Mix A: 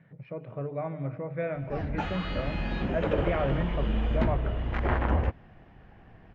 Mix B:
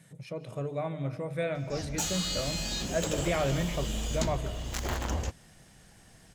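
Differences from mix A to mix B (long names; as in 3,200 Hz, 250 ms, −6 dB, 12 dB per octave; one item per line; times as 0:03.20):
background −6.5 dB
master: remove low-pass filter 2,200 Hz 24 dB per octave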